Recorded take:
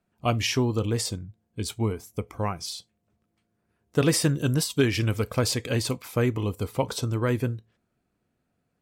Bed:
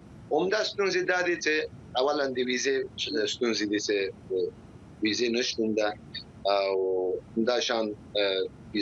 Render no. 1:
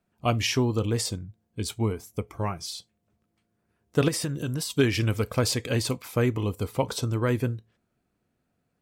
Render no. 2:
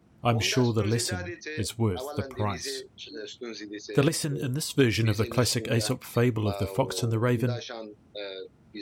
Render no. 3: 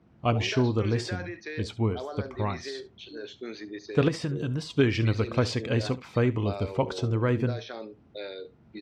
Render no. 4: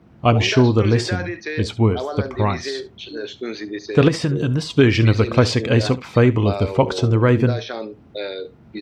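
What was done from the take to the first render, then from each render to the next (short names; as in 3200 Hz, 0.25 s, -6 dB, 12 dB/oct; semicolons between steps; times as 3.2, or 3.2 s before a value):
2.23–2.75 notch comb 250 Hz; 4.08–4.72 compressor 4:1, threshold -26 dBFS
add bed -11 dB
air absorption 150 m; echo 71 ms -18.5 dB
gain +10 dB; limiter -2 dBFS, peak gain reduction 2 dB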